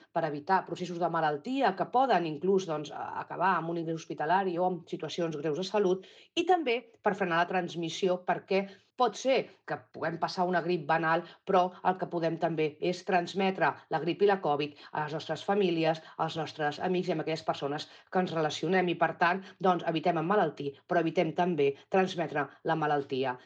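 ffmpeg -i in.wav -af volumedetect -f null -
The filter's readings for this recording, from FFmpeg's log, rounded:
mean_volume: -30.1 dB
max_volume: -13.1 dB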